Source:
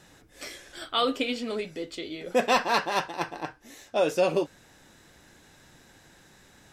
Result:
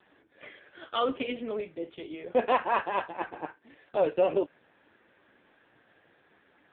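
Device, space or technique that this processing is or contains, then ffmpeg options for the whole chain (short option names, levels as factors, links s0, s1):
telephone: -af "highpass=250,lowpass=3000" -ar 8000 -c:a libopencore_amrnb -b:a 5150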